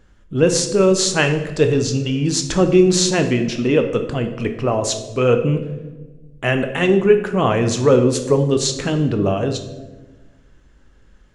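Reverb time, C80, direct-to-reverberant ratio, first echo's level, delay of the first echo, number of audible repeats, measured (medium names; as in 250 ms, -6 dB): 1.2 s, 12.0 dB, 6.0 dB, no echo, no echo, no echo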